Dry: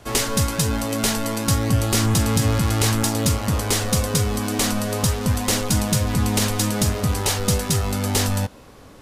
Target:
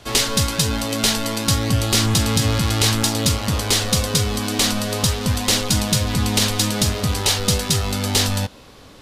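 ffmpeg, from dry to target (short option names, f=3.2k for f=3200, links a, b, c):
-af "equalizer=f=3.8k:t=o:w=1.3:g=8"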